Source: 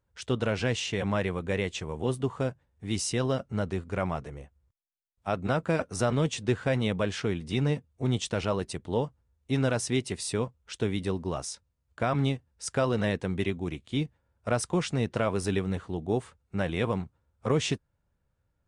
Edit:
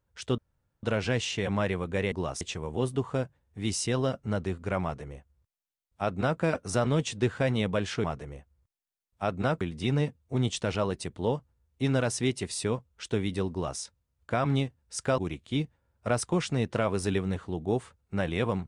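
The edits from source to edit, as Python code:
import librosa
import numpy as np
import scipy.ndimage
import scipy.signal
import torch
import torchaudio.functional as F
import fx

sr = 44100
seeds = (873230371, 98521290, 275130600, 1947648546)

y = fx.edit(x, sr, fx.insert_room_tone(at_s=0.38, length_s=0.45),
    fx.duplicate(start_s=4.09, length_s=1.57, to_s=7.3),
    fx.duplicate(start_s=11.2, length_s=0.29, to_s=1.67),
    fx.cut(start_s=12.87, length_s=0.72), tone=tone)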